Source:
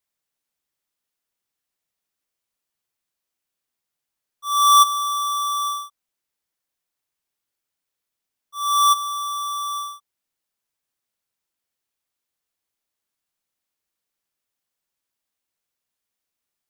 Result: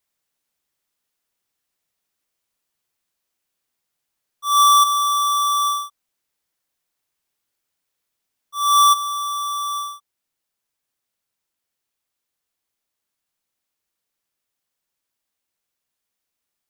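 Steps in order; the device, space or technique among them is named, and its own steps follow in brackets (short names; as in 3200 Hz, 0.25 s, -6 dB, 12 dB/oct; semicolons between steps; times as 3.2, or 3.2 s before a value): clipper into limiter (hard clip -14 dBFS, distortion -16 dB; limiter -16.5 dBFS, peak gain reduction 2.5 dB); gain +4.5 dB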